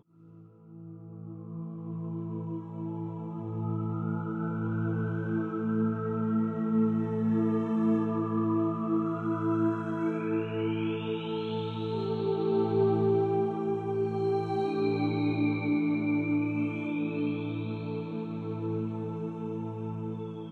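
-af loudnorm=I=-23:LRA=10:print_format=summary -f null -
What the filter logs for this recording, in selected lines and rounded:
Input Integrated:    -31.0 LUFS
Input True Peak:     -15.3 dBTP
Input LRA:             7.1 LU
Input Threshold:     -41.3 LUFS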